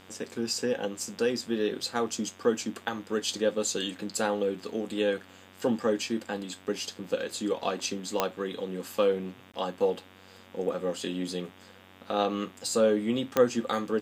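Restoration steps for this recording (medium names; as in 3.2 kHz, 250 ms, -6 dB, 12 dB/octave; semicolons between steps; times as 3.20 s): de-click; de-hum 94 Hz, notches 40; interpolate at 9.52 s, 16 ms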